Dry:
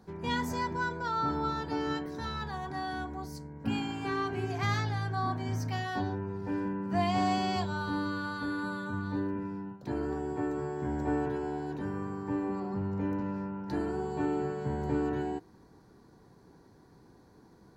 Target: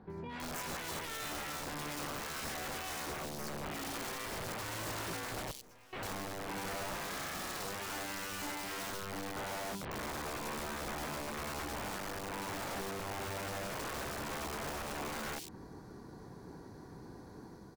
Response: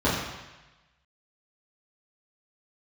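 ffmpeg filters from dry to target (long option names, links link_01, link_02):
-filter_complex "[0:a]acompressor=threshold=-38dB:ratio=8,alimiter=level_in=14.5dB:limit=-24dB:level=0:latency=1:release=46,volume=-14.5dB,dynaudnorm=framelen=150:gausssize=5:maxgain=6dB,aeval=exprs='(mod(66.8*val(0)+1,2)-1)/66.8':channel_layout=same,asettb=1/sr,asplit=3[link_01][link_02][link_03];[link_01]atrim=end=5.514[link_04];[link_02]atrim=start=5.51:end=5.93,asetpts=PTS-STARTPTS,afade=type=in:duration=0.004:curve=qsin,afade=type=out:start_time=0.416:duration=0.004:curve=qsin,aeval=exprs='(tanh(1120*val(0)+0.7)-tanh(0.7))/1120':channel_layout=same[link_05];[link_03]atrim=start=5.926[link_06];[link_04][link_05]acrossfade=duration=0.004:curve1=hsin:curve2=qsin[link_07];[link_07][link_06]acrossfade=duration=0.004:curve1=qsin:curve2=hsin,acrossover=split=3200[link_08][link_09];[link_09]adelay=100[link_10];[link_08][link_10]amix=inputs=2:normalize=0,volume=1.5dB"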